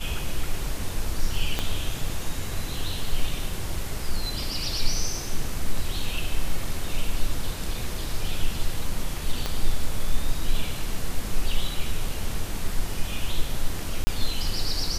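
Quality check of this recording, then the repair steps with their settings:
0:01.59: click −10 dBFS
0:09.46: click −12 dBFS
0:14.04–0:14.07: drop-out 30 ms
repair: click removal
repair the gap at 0:14.04, 30 ms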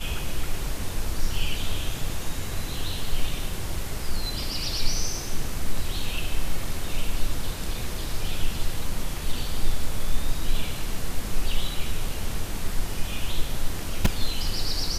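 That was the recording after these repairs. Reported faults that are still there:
0:01.59: click
0:09.46: click

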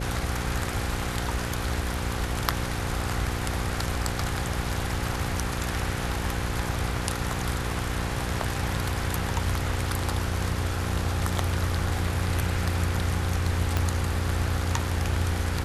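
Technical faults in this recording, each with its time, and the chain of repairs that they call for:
mains buzz 60 Hz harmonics 9 −32 dBFS
0:13.77: click −10 dBFS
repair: click removal
hum removal 60 Hz, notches 9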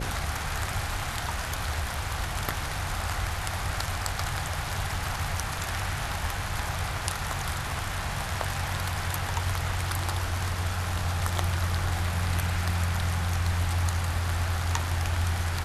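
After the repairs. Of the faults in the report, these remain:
0:13.77: click

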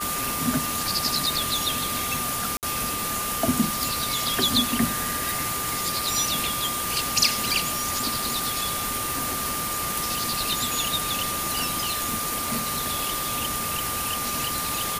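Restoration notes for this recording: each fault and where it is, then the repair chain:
scratch tick 33 1/3 rpm
whistle 1,200 Hz −31 dBFS
0:02.57–0:02.63: drop-out 58 ms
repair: click removal
notch filter 1,200 Hz, Q 30
repair the gap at 0:02.57, 58 ms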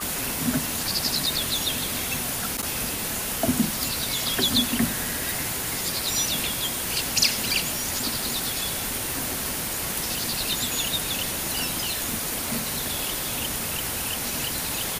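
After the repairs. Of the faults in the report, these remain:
none of them is left

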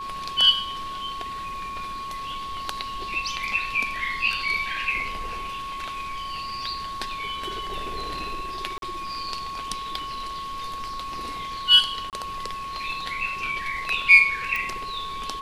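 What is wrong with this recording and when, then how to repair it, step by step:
whistle 1,100 Hz −31 dBFS
0:08.78–0:08.82: drop-out 42 ms
0:12.10–0:12.13: drop-out 28 ms
0:14.56: click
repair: click removal
notch filter 1,100 Hz, Q 30
repair the gap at 0:08.78, 42 ms
repair the gap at 0:12.10, 28 ms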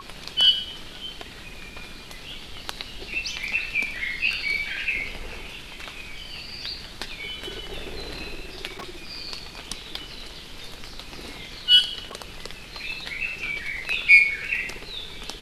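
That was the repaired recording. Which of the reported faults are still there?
none of them is left

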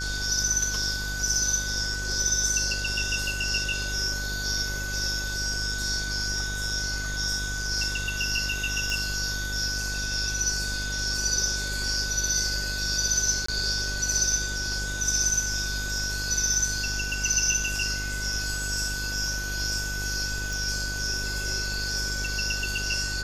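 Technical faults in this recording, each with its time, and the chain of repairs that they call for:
mains buzz 50 Hz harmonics 39 −34 dBFS
whistle 1,500 Hz −32 dBFS
0:08.90: click
0:13.46–0:13.48: drop-out 24 ms
0:20.53: click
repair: click removal
hum removal 50 Hz, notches 39
notch filter 1,500 Hz, Q 30
repair the gap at 0:13.46, 24 ms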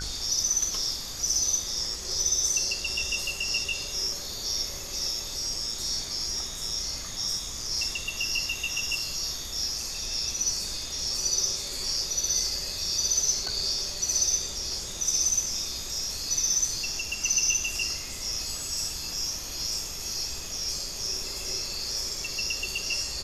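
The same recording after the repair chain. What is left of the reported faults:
none of them is left

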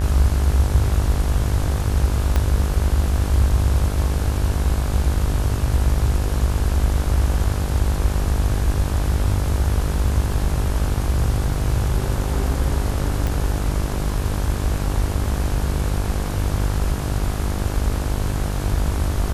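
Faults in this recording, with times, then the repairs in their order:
mains buzz 50 Hz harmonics 35 −24 dBFS
0:02.36: click −7 dBFS
0:13.27: click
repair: click removal
hum removal 50 Hz, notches 35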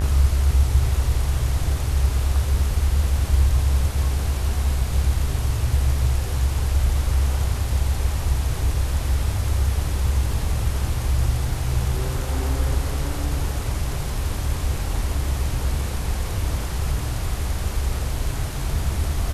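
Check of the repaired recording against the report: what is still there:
0:02.36: click

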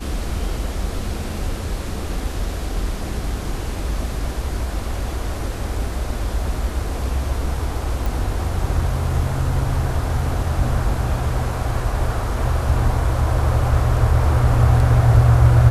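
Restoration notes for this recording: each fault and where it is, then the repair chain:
0:08.06: click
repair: click removal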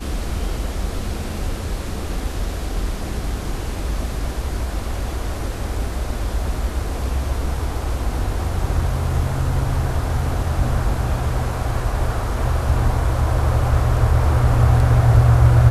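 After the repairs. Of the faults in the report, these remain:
none of them is left

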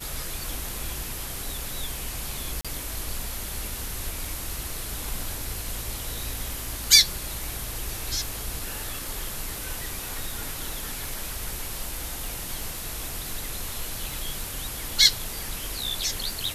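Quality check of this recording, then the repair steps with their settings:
surface crackle 28 per second −33 dBFS
0:02.61–0:02.65: drop-out 36 ms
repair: click removal
repair the gap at 0:02.61, 36 ms

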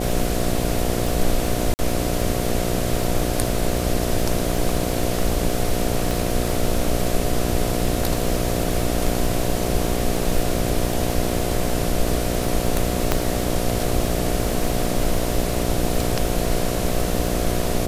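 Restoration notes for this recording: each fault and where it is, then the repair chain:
mains buzz 60 Hz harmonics 12 −25 dBFS
surface crackle 50 per second −25 dBFS
0:01.74–0:01.79: drop-out 49 ms
0:06.11: click
0:13.12: click −2 dBFS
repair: click removal
hum removal 60 Hz, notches 12
repair the gap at 0:01.74, 49 ms

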